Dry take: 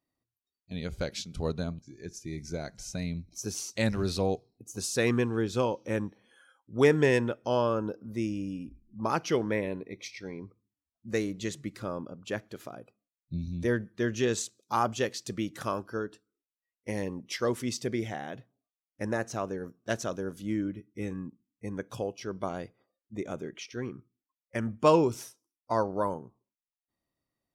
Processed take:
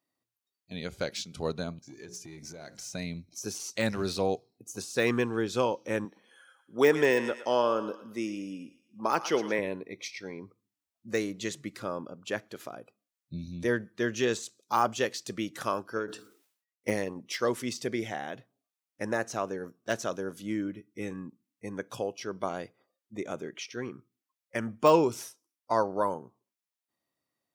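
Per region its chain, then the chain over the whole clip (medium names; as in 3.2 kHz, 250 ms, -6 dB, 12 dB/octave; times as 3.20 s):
1.82–2.94 s: hum notches 60/120/180/240/300/360/420/480/540 Hz + compression 12:1, threshold -42 dBFS + waveshaping leveller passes 1
6.05–9.59 s: high-pass 200 Hz + thinning echo 114 ms, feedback 44%, high-pass 680 Hz, level -11.5 dB
15.96–17.16 s: transient shaper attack +8 dB, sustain -10 dB + decay stretcher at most 100 dB/s
whole clip: high-pass 100 Hz; de-esser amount 85%; bass shelf 310 Hz -7.5 dB; trim +3 dB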